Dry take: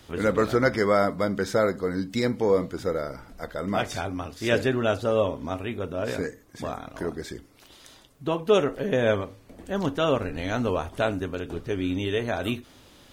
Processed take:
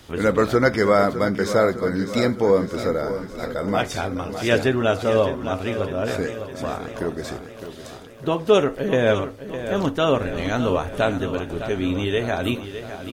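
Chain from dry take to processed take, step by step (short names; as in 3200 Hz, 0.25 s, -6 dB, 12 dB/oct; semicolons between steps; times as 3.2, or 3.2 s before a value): feedback echo 0.608 s, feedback 58%, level -11 dB; gain +4 dB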